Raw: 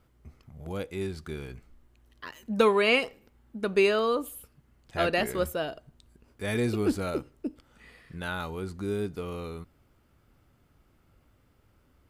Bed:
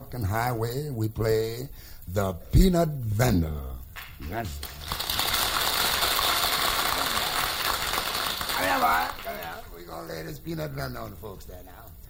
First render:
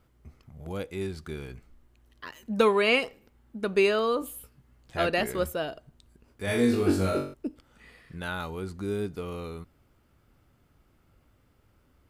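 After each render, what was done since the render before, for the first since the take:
0:04.20–0:04.96: double-tracking delay 16 ms −5 dB
0:06.45–0:07.34: flutter between parallel walls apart 3.6 metres, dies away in 0.44 s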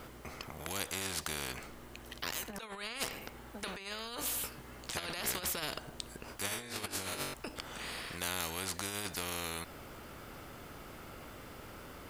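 compressor whose output falls as the input rises −31 dBFS, ratio −0.5
every bin compressed towards the loudest bin 4 to 1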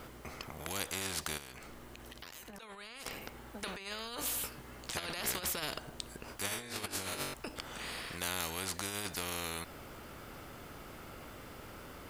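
0:01.37–0:03.06: downward compressor, threshold −45 dBFS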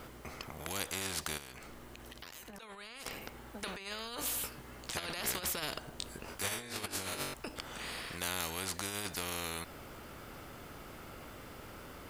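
0:05.97–0:06.49: double-tracking delay 22 ms −3.5 dB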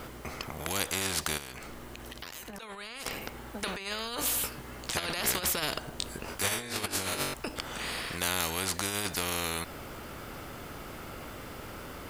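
level +6.5 dB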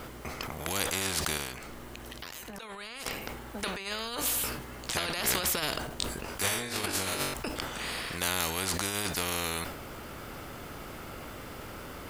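level that may fall only so fast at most 57 dB per second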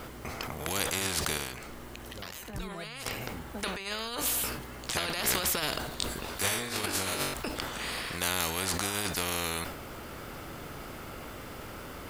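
mix in bed −21.5 dB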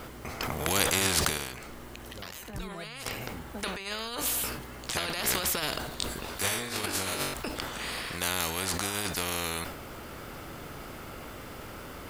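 0:00.41–0:01.29: clip gain +5 dB

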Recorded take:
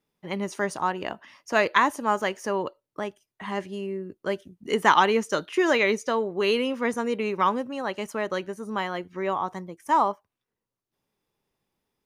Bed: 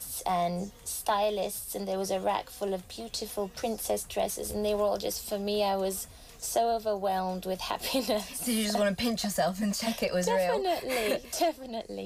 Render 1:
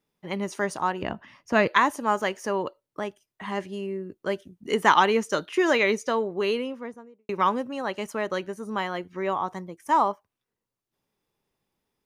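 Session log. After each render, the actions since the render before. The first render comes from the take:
0:01.02–0:01.68: bass and treble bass +12 dB, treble −7 dB
0:06.17–0:07.29: fade out and dull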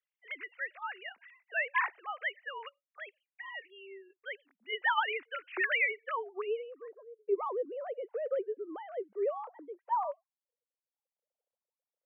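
three sine waves on the formant tracks
band-pass filter sweep 2,100 Hz → 470 Hz, 0:05.83–0:07.20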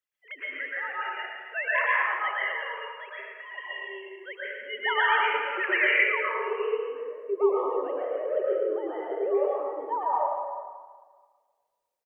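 slap from a distant wall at 19 metres, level −9 dB
dense smooth reverb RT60 1.6 s, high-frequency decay 0.7×, pre-delay 105 ms, DRR −6.5 dB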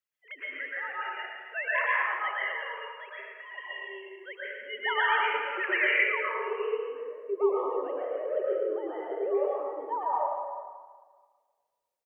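level −2.5 dB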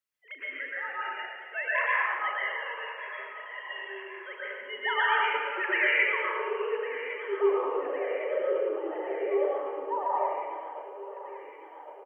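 double-tracking delay 38 ms −11 dB
delay that swaps between a low-pass and a high-pass 553 ms, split 880 Hz, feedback 77%, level −12 dB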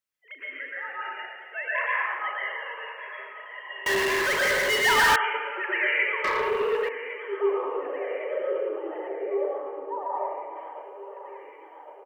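0:03.86–0:05.16: power curve on the samples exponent 0.35
0:06.24–0:06.89: leveller curve on the samples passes 2
0:09.07–0:10.55: low-pass filter 1,400 Hz → 1,100 Hz 6 dB per octave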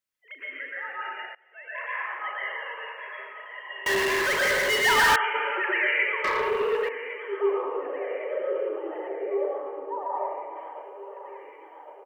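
0:01.35–0:02.58: fade in linear, from −22 dB
0:05.35–0:05.91: envelope flattener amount 50%
0:07.62–0:08.59: high-frequency loss of the air 120 metres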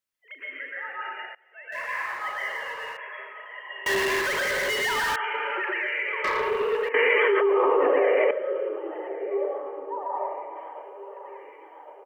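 0:01.72–0:02.97: mu-law and A-law mismatch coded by mu
0:04.20–0:06.21: downward compressor, threshold −24 dBFS
0:06.94–0:08.31: envelope flattener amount 100%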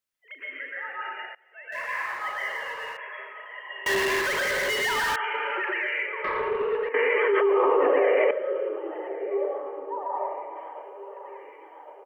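0:06.06–0:07.34: high-frequency loss of the air 400 metres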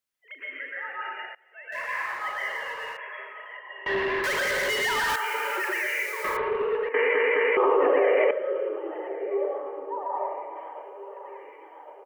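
0:03.57–0:04.24: high-frequency loss of the air 350 metres
0:05.09–0:06.37: spike at every zero crossing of −32.5 dBFS
0:06.94: stutter in place 0.21 s, 3 plays

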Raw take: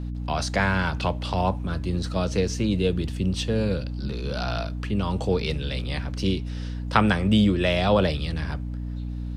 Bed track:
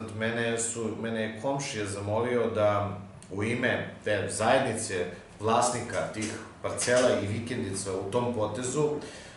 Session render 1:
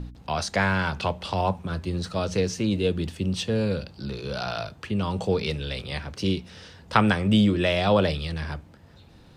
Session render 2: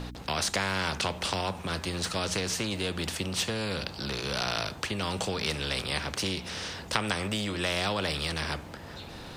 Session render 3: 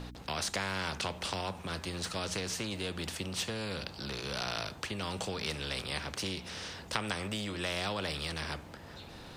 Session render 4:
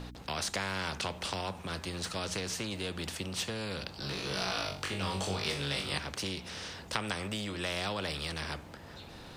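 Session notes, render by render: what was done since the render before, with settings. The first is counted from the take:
hum removal 60 Hz, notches 5
downward compressor 3 to 1, threshold −24 dBFS, peak gain reduction 8.5 dB; every bin compressed towards the loudest bin 2 to 1
level −5.5 dB
0:03.98–0:05.98: flutter between parallel walls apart 3.6 metres, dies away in 0.36 s

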